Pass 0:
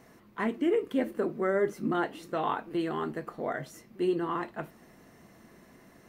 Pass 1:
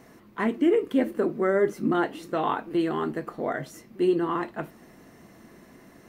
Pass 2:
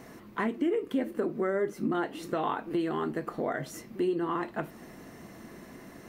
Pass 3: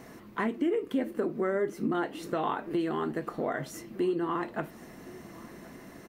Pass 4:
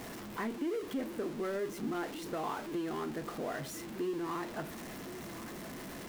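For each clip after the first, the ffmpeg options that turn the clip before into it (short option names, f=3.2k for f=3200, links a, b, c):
-af "equalizer=f=300:w=1.9:g=3,volume=3.5dB"
-af "acompressor=threshold=-34dB:ratio=2.5,volume=3.5dB"
-af "aecho=1:1:1070:0.0794"
-af "aeval=exprs='val(0)+0.5*0.0266*sgn(val(0))':c=same,volume=-9dB"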